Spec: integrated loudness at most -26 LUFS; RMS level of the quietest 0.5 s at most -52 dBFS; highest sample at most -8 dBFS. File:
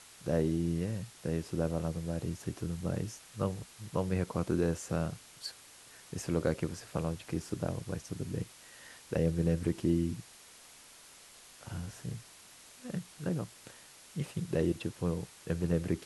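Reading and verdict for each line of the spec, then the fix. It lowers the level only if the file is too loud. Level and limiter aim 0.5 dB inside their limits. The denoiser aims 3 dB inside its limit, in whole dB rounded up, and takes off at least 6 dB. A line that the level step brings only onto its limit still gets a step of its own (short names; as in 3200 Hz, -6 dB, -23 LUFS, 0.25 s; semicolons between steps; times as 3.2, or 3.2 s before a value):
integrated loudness -35.5 LUFS: OK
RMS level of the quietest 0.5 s -55 dBFS: OK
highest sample -16.0 dBFS: OK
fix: none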